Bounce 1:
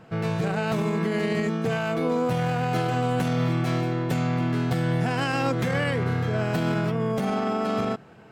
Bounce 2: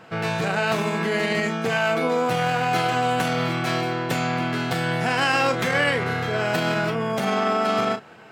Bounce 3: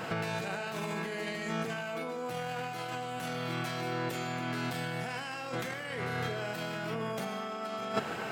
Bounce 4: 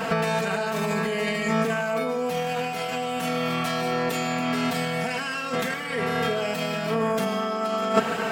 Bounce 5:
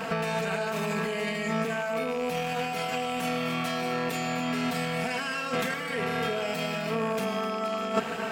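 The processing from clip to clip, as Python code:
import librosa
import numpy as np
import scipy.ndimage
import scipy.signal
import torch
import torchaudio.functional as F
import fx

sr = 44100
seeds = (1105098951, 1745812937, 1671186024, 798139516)

y1 = fx.lowpass(x, sr, hz=2300.0, slope=6)
y1 = fx.tilt_eq(y1, sr, slope=3.5)
y1 = fx.doubler(y1, sr, ms=35.0, db=-9)
y1 = y1 * 10.0 ** (6.5 / 20.0)
y2 = fx.high_shelf(y1, sr, hz=7600.0, db=7.5)
y2 = fx.over_compress(y2, sr, threshold_db=-34.0, ratio=-1.0)
y2 = fx.rev_plate(y2, sr, seeds[0], rt60_s=0.73, hf_ratio=0.9, predelay_ms=100, drr_db=11.5)
y2 = y2 * 10.0 ** (-2.5 / 20.0)
y3 = y2 + 0.94 * np.pad(y2, (int(4.4 * sr / 1000.0), 0))[:len(y2)]
y3 = y3 * 10.0 ** (7.0 / 20.0)
y4 = fx.rattle_buzz(y3, sr, strikes_db=-34.0, level_db=-24.0)
y4 = fx.rider(y4, sr, range_db=10, speed_s=0.5)
y4 = y4 + 10.0 ** (-13.5 / 20.0) * np.pad(y4, (int(254 * sr / 1000.0), 0))[:len(y4)]
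y4 = y4 * 10.0 ** (-4.0 / 20.0)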